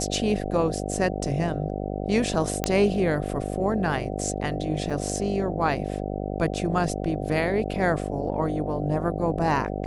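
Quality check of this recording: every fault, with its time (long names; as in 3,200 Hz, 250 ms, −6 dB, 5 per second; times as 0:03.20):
mains buzz 50 Hz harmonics 15 −30 dBFS
0:02.64: click −8 dBFS
0:04.90: drop-out 4.6 ms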